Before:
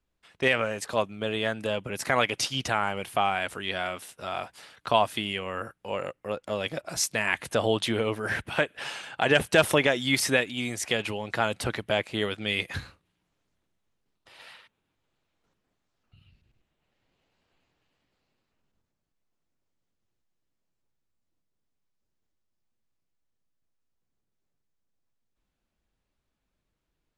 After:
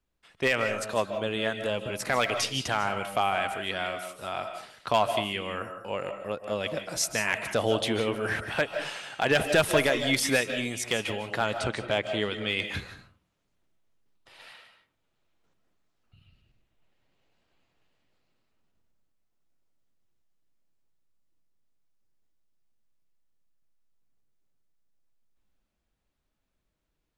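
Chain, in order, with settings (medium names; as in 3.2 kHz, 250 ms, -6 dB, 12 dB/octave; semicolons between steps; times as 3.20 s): 11.44–12.70 s: low-pass 8.5 kHz 24 dB/octave; overload inside the chain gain 13.5 dB; algorithmic reverb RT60 0.4 s, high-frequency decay 0.45×, pre-delay 115 ms, DRR 7.5 dB; trim -1 dB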